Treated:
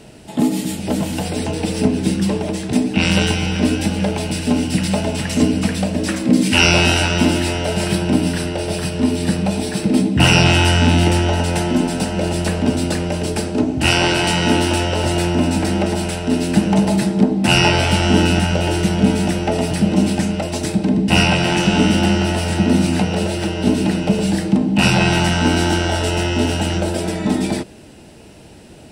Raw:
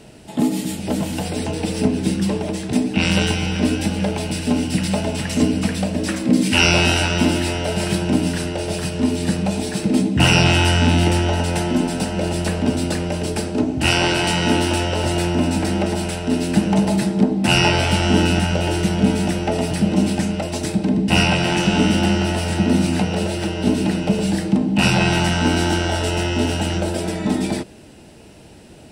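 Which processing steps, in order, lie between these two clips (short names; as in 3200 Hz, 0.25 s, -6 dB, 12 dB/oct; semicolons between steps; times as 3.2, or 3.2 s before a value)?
7.87–10.24 notch 6800 Hz, Q 6.4; gain +2 dB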